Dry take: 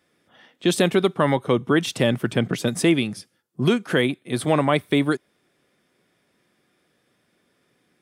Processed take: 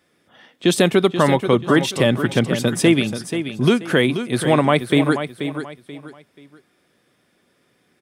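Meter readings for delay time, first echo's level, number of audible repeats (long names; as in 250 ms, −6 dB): 483 ms, −9.5 dB, 3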